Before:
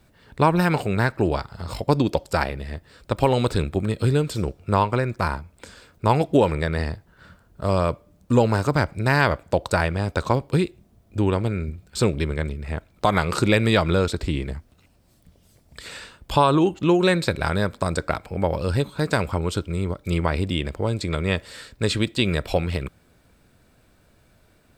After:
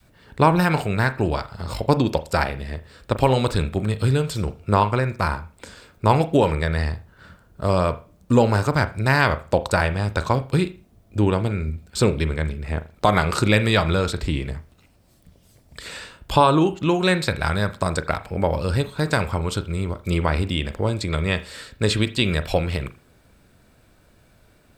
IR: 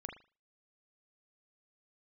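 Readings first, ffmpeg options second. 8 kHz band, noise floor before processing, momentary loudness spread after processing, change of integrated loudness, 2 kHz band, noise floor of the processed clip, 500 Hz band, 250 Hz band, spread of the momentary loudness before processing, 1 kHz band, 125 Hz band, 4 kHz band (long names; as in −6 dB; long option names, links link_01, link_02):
+2.0 dB, −59 dBFS, 10 LU, +1.0 dB, +2.0 dB, −57 dBFS, +0.5 dB, +0.5 dB, 12 LU, +2.0 dB, +1.5 dB, +2.0 dB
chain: -filter_complex "[0:a]adynamicequalizer=threshold=0.0251:dfrequency=350:dqfactor=0.7:tfrequency=350:tqfactor=0.7:attack=5:release=100:ratio=0.375:range=3:mode=cutabove:tftype=bell,asplit=2[link_01][link_02];[1:a]atrim=start_sample=2205[link_03];[link_02][link_03]afir=irnorm=-1:irlink=0,volume=-2.5dB[link_04];[link_01][link_04]amix=inputs=2:normalize=0,volume=-1dB"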